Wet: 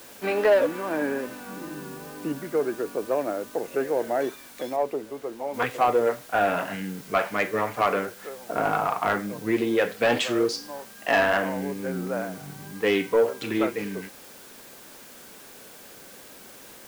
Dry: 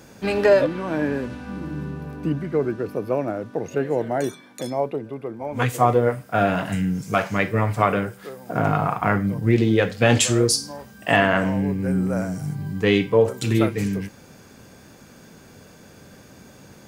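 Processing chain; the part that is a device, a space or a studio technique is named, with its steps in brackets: tape answering machine (band-pass 340–3100 Hz; saturation -12.5 dBFS, distortion -15 dB; wow and flutter; white noise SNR 21 dB); 4.76–5.54 s: treble shelf 3.7 kHz -8 dB

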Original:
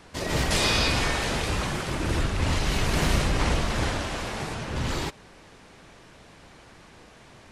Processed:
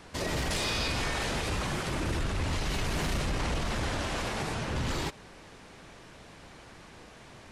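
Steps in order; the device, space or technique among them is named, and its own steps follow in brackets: soft clipper into limiter (saturation -15.5 dBFS, distortion -21 dB; peak limiter -23.5 dBFS, peak gain reduction 7 dB)

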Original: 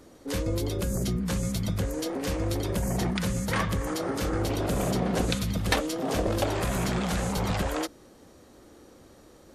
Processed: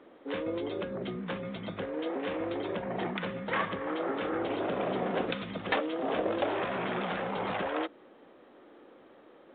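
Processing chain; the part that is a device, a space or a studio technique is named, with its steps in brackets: telephone (band-pass 310–3300 Hz; saturation -18.5 dBFS, distortion -23 dB; µ-law 64 kbps 8 kHz)

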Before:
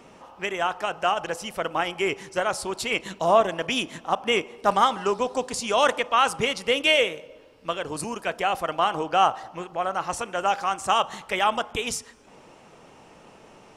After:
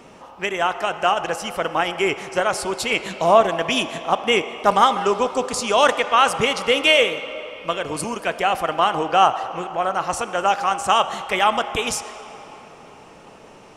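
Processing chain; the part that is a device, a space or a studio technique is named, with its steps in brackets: filtered reverb send (on a send: high-pass 340 Hz + low-pass 7 kHz + reverberation RT60 4.2 s, pre-delay 54 ms, DRR 11.5 dB); on the sum: trim +4.5 dB

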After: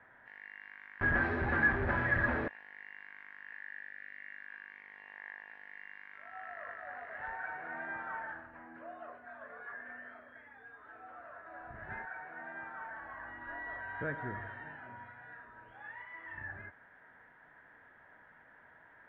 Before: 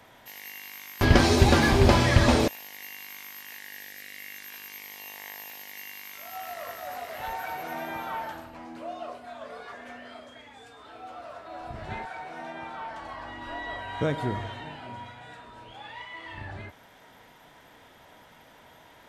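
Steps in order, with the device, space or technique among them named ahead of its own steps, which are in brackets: overdriven synthesiser ladder filter (saturation -17.5 dBFS, distortion -10 dB; four-pole ladder low-pass 1.8 kHz, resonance 75%)

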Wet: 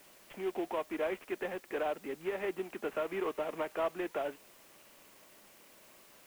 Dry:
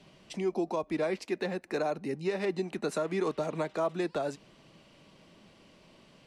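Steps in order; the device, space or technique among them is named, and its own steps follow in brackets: army field radio (band-pass 340–3300 Hz; CVSD coder 16 kbps; white noise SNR 23 dB); peaking EQ 88 Hz -3.5 dB 1.4 oct; trim -2 dB

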